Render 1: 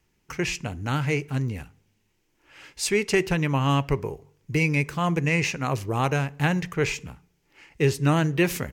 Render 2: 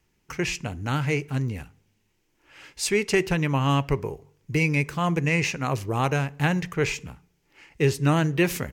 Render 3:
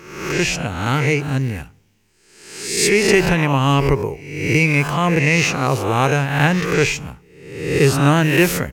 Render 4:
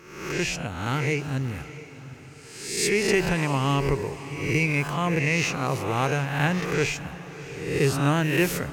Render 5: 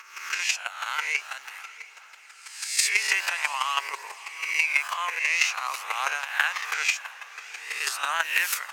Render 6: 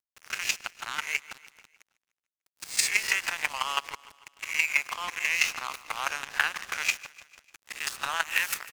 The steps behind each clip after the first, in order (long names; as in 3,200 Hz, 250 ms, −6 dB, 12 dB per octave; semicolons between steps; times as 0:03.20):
no processing that can be heard
peak hold with a rise ahead of every peak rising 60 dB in 0.85 s; level +6 dB
feedback delay with all-pass diffusion 646 ms, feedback 47%, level −15 dB; level −8 dB
high-pass filter 1,000 Hz 24 dB per octave; phase shifter 0.49 Hz, delay 2.1 ms, feedback 25%; square-wave tremolo 6.1 Hz, depth 60%, duty 10%; level +9 dB
dead-zone distortion −31.5 dBFS; repeating echo 149 ms, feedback 54%, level −19 dB